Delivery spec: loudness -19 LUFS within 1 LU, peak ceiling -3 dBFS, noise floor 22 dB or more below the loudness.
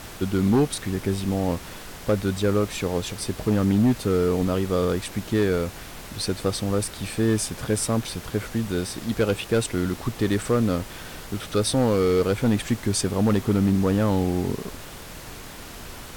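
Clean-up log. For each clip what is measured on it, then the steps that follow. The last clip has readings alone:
clipped samples 1.3%; clipping level -14.0 dBFS; noise floor -40 dBFS; noise floor target -46 dBFS; loudness -24.0 LUFS; peak level -14.0 dBFS; loudness target -19.0 LUFS
-> clip repair -14 dBFS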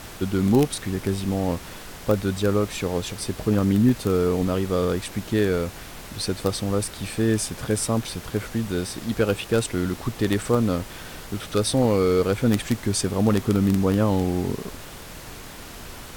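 clipped samples 0.0%; noise floor -40 dBFS; noise floor target -46 dBFS
-> noise print and reduce 6 dB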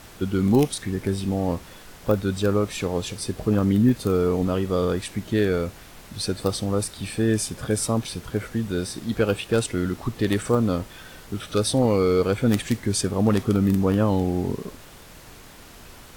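noise floor -45 dBFS; noise floor target -46 dBFS
-> noise print and reduce 6 dB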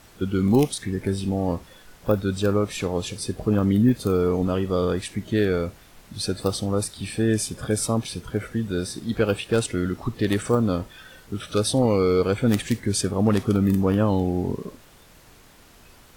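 noise floor -51 dBFS; loudness -24.0 LUFS; peak level -5.0 dBFS; loudness target -19.0 LUFS
-> trim +5 dB; peak limiter -3 dBFS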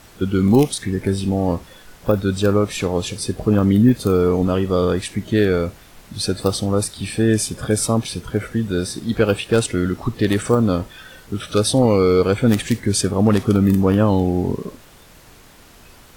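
loudness -19.0 LUFS; peak level -3.0 dBFS; noise floor -46 dBFS

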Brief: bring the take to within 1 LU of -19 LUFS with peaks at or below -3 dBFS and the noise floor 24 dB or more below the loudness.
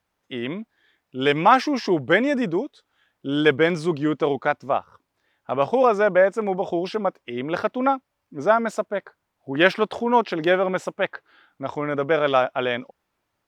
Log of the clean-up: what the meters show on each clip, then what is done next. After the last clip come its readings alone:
loudness -22.0 LUFS; peak level -1.5 dBFS; loudness target -19.0 LUFS
-> trim +3 dB; peak limiter -3 dBFS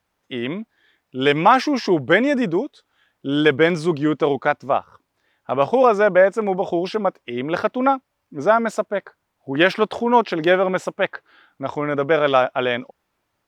loudness -19.5 LUFS; peak level -3.0 dBFS; noise floor -74 dBFS

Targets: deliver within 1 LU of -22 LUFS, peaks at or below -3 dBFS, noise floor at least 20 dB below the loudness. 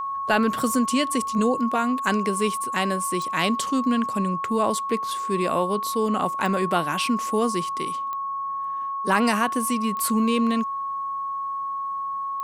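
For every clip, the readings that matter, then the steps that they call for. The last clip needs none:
clicks found 5; steady tone 1.1 kHz; tone level -26 dBFS; loudness -24.0 LUFS; peak level -6.5 dBFS; loudness target -22.0 LUFS
-> de-click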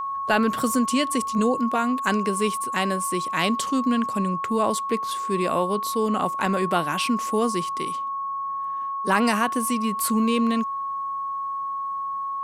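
clicks found 0; steady tone 1.1 kHz; tone level -26 dBFS
-> band-stop 1.1 kHz, Q 30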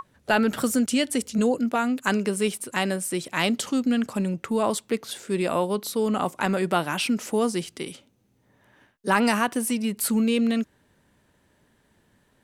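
steady tone not found; loudness -25.0 LUFS; peak level -7.0 dBFS; loudness target -22.0 LUFS
-> trim +3 dB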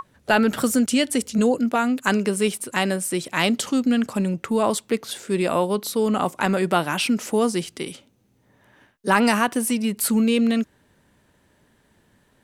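loudness -22.0 LUFS; peak level -4.0 dBFS; noise floor -62 dBFS

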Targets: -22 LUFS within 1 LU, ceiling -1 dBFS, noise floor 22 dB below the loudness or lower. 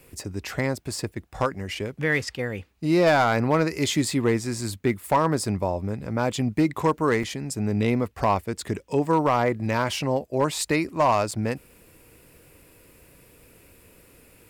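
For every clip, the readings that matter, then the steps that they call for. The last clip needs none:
clipped samples 0.4%; clipping level -13.0 dBFS; dropouts 2; longest dropout 4.1 ms; loudness -25.0 LUFS; peak level -13.0 dBFS; loudness target -22.0 LUFS
-> clip repair -13 dBFS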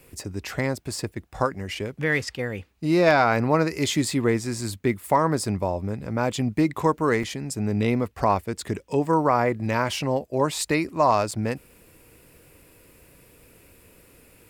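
clipped samples 0.0%; dropouts 2; longest dropout 4.1 ms
-> interpolate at 7.23/11.31 s, 4.1 ms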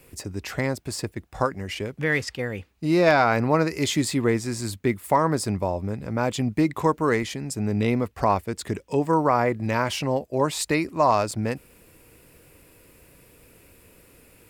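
dropouts 0; loudness -24.5 LUFS; peak level -6.5 dBFS; loudness target -22.0 LUFS
-> trim +2.5 dB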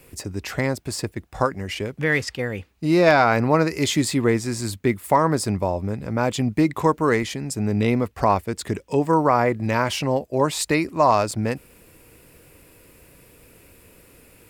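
loudness -22.0 LUFS; peak level -4.0 dBFS; noise floor -54 dBFS

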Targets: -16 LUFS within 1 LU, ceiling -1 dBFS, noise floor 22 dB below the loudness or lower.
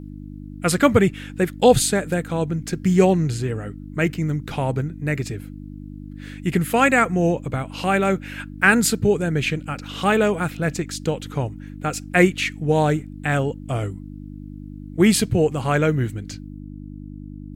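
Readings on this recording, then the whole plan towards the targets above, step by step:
hum 50 Hz; highest harmonic 300 Hz; hum level -34 dBFS; loudness -21.0 LUFS; peak level -1.5 dBFS; loudness target -16.0 LUFS
-> de-hum 50 Hz, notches 6; trim +5 dB; peak limiter -1 dBFS

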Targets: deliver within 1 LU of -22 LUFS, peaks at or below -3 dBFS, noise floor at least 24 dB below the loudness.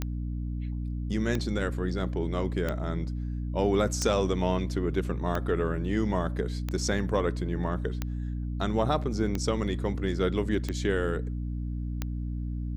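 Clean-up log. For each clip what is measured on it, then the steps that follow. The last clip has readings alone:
clicks found 10; hum 60 Hz; highest harmonic 300 Hz; hum level -30 dBFS; loudness -30.0 LUFS; peak level -12.0 dBFS; loudness target -22.0 LUFS
-> de-click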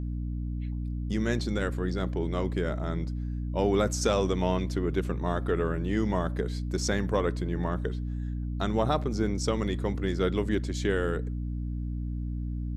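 clicks found 0; hum 60 Hz; highest harmonic 300 Hz; hum level -30 dBFS
-> de-hum 60 Hz, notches 5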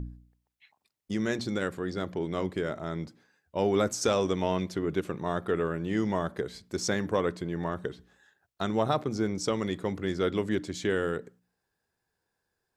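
hum not found; loudness -30.5 LUFS; peak level -12.5 dBFS; loudness target -22.0 LUFS
-> trim +8.5 dB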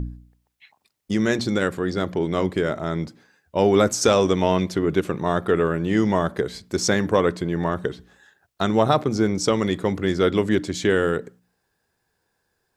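loudness -22.0 LUFS; peak level -4.0 dBFS; noise floor -74 dBFS

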